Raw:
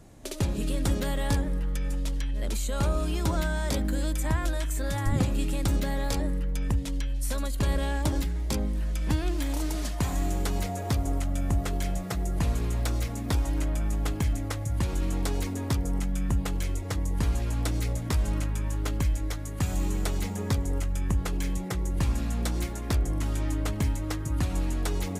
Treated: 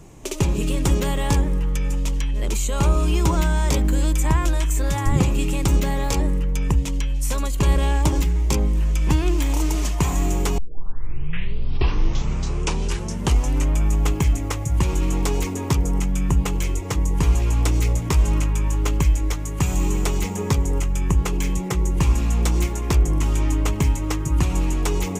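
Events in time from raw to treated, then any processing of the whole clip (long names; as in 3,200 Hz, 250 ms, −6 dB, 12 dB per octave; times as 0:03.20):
0:10.58: tape start 3.17 s
whole clip: EQ curve with evenly spaced ripples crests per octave 0.73, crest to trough 7 dB; level +6.5 dB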